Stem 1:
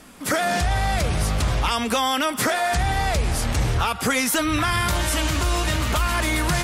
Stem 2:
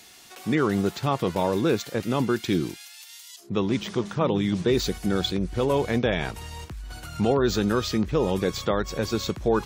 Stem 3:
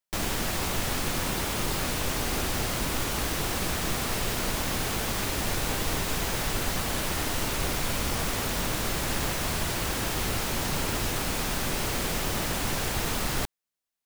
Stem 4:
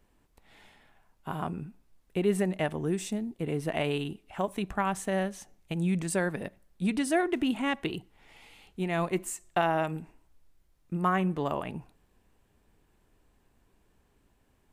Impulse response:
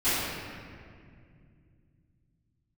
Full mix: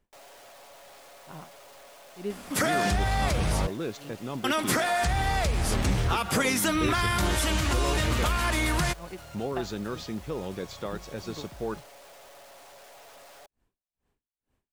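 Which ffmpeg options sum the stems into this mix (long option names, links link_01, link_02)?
-filter_complex "[0:a]acompressor=threshold=-24dB:ratio=4,adelay=2300,volume=1dB,asplit=3[link_01][link_02][link_03];[link_01]atrim=end=3.67,asetpts=PTS-STARTPTS,afade=type=out:start_time=3.666:duration=0.004:curve=hsin[link_04];[link_02]atrim=start=3.67:end=4.44,asetpts=PTS-STARTPTS,volume=0[link_05];[link_03]atrim=start=4.44,asetpts=PTS-STARTPTS,afade=type=in:duration=0.004:curve=hsin[link_06];[link_04][link_05][link_06]concat=n=3:v=0:a=1[link_07];[1:a]adelay=2150,volume=-10.5dB[link_08];[2:a]highpass=frequency=600:width_type=q:width=3.8,aecho=1:1:7.2:0.63,aeval=exprs='(tanh(39.8*val(0)+0.25)-tanh(0.25))/39.8':channel_layout=same,volume=-16dB[link_09];[3:a]aeval=exprs='val(0)*pow(10,-39*(0.5-0.5*cos(2*PI*2.2*n/s))/20)':channel_layout=same,volume=-6.5dB[link_10];[link_07][link_08][link_09][link_10]amix=inputs=4:normalize=0,highshelf=frequency=11000:gain=-3.5"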